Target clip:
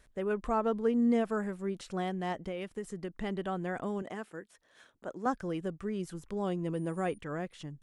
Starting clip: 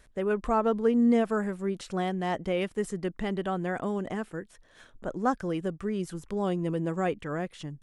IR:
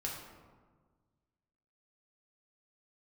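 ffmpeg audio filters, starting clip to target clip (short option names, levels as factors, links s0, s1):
-filter_complex "[0:a]asettb=1/sr,asplit=3[s0][s1][s2];[s0]atrim=end=2.324[s3];[s1]atrim=start=2.32:end=3.16,asetpts=PTS-STARTPTS,afade=t=in:d=0.004:c=qsin,afade=t=out:st=0.836:d=0.004:c=qsin,acompressor=threshold=0.0316:ratio=6[s4];[s2]atrim=start=3.156[s5];[s3][s4]acrossfade=d=0.004:c1=hsin:c2=qsin[s6];[s6][s5]acrossfade=d=0.004:c1=qsin:c2=hsin,asettb=1/sr,asplit=3[s7][s8][s9];[s7]atrim=end=4.024[s10];[s8]atrim=start=4.02:end=5.26,asetpts=PTS-STARTPTS,afade=t=in:d=0.004:c=qsin,afade=t=out:st=1.236:d=0.004:c=qsin,highpass=f=320:p=1[s11];[s9]atrim=start=5.256[s12];[s10][s11]acrossfade=d=0.004:c1=hsin:c2=qsin[s13];[s13][s12]acrossfade=d=0.004:c1=qsin:c2=hsin,asettb=1/sr,asplit=3[s14][s15][s16];[s14]atrim=end=6.744[s17];[s15]atrim=start=6.74:end=7.18,asetpts=PTS-STARTPTS,afade=t=in:d=0.004:c=qsin,afade=t=out:st=0.436:d=0.004:c=qsin,aeval=exprs='val(0)+0.00158*sin(2*PI*9500*n/s)':c=same[s18];[s16]atrim=start=7.176[s19];[s17][s18]acrossfade=d=0.004:c1=hsin:c2=qsin[s20];[s20][s19]acrossfade=d=0.004:c1=qsin:c2=hsin,volume=0.596"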